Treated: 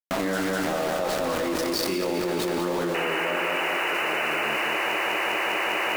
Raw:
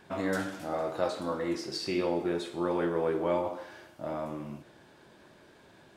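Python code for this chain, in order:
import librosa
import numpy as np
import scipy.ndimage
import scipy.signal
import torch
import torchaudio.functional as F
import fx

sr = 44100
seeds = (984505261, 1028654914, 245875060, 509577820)

p1 = scipy.signal.sosfilt(scipy.signal.butter(4, 150.0, 'highpass', fs=sr, output='sos'), x)
p2 = fx.spec_paint(p1, sr, seeds[0], shape='noise', start_s=2.94, length_s=1.98, low_hz=300.0, high_hz=3000.0, level_db=-26.0)
p3 = np.where(np.abs(p2) >= 10.0 ** (-34.0 / 20.0), p2, 0.0)
p4 = p3 + fx.echo_feedback(p3, sr, ms=201, feedback_pct=57, wet_db=-4.0, dry=0)
p5 = fx.env_flatten(p4, sr, amount_pct=100)
y = p5 * librosa.db_to_amplitude(-5.0)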